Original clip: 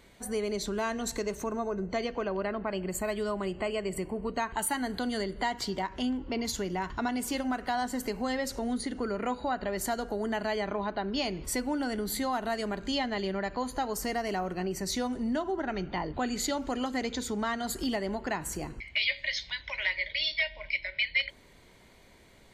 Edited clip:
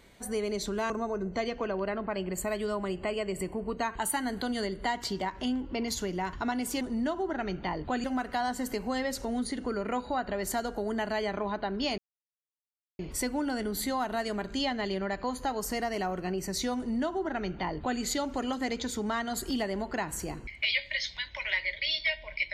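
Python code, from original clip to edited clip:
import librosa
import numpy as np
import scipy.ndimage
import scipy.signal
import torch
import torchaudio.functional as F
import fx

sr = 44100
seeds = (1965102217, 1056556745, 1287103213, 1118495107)

y = fx.edit(x, sr, fx.cut(start_s=0.9, length_s=0.57),
    fx.insert_silence(at_s=11.32, length_s=1.01),
    fx.duplicate(start_s=15.1, length_s=1.23, to_s=7.38), tone=tone)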